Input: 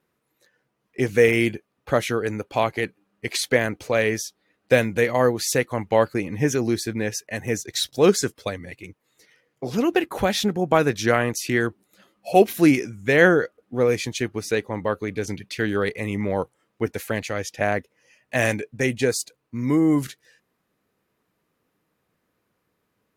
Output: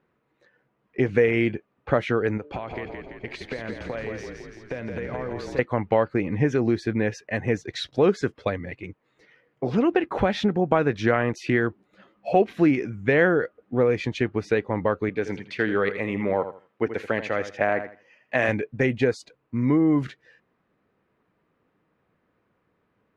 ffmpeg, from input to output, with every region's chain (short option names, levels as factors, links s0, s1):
-filter_complex "[0:a]asettb=1/sr,asplit=3[s0][s1][s2];[s0]atrim=end=2.374[s3];[s1]atrim=start=2.37:end=5.59,asetpts=PTS-STARTPTS,afade=t=in:d=0.004:c=qsin,afade=t=out:st=3.216:d=0.004:c=qsin,bandreject=f=147.9:t=h:w=4,bandreject=f=295.8:t=h:w=4,bandreject=f=443.7:t=h:w=4,bandreject=f=591.6:t=h:w=4,acompressor=threshold=0.0282:ratio=12:attack=3.2:release=140:knee=1:detection=peak,asplit=9[s4][s5][s6][s7][s8][s9][s10][s11][s12];[s5]adelay=168,afreqshift=-35,volume=0.562[s13];[s6]adelay=336,afreqshift=-70,volume=0.339[s14];[s7]adelay=504,afreqshift=-105,volume=0.202[s15];[s8]adelay=672,afreqshift=-140,volume=0.122[s16];[s9]adelay=840,afreqshift=-175,volume=0.0733[s17];[s10]adelay=1008,afreqshift=-210,volume=0.0437[s18];[s11]adelay=1176,afreqshift=-245,volume=0.0263[s19];[s12]adelay=1344,afreqshift=-280,volume=0.0157[s20];[s4][s13][s14][s15][s16][s17][s18][s19][s20]amix=inputs=9:normalize=0,atrim=end_sample=142002[s21];[s2]atrim=start=5.586[s22];[s3][s21]acrossfade=d=0.004:c1=hsin:c2=qsin[s23];[s23][s22]acrossfade=d=0.004:c1=qsin:c2=hsin,asettb=1/sr,asplit=3[s24][s25][s26];[s24]atrim=end=15.094[s27];[s25]atrim=start=15.09:end=18.49,asetpts=PTS-STARTPTS,afade=t=in:d=0.004:c=qsin,afade=t=out:st=3.396:d=0.004:c=qsin,highpass=f=300:p=1,aecho=1:1:81|162|243:0.251|0.0553|0.0122,atrim=end_sample=149940[s28];[s26]atrim=start=18.486[s29];[s27][s28]acrossfade=d=0.004:c1=hsin:c2=qsin[s30];[s30][s29]acrossfade=d=0.004:c1=qsin:c2=hsin,lowpass=2300,acompressor=threshold=0.0794:ratio=2.5,volume=1.5"